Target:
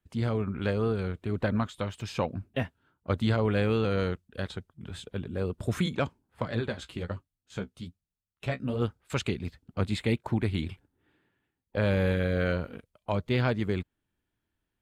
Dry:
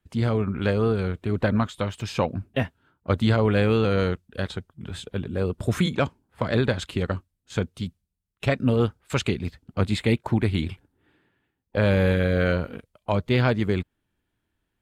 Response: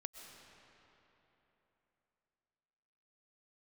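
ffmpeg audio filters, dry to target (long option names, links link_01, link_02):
-filter_complex "[0:a]asettb=1/sr,asplit=3[link_01][link_02][link_03];[link_01]atrim=end=6.454[link_04];[link_02]atrim=start=6.45:end=8.82,asetpts=PTS-STARTPTS,afade=type=in:duration=0.004:curve=qsin,afade=type=out:start_time=2.366:duration=0.004:curve=qsin,flanger=delay=6.6:depth=9.3:regen=25:speed=1.2:shape=sinusoidal[link_05];[link_03]atrim=start=8.816[link_06];[link_04][link_05]acrossfade=duration=0.004:curve1=hsin:curve2=qsin[link_07];[link_07][link_06]acrossfade=duration=0.004:curve1=qsin:curve2=hsin,volume=-5.5dB"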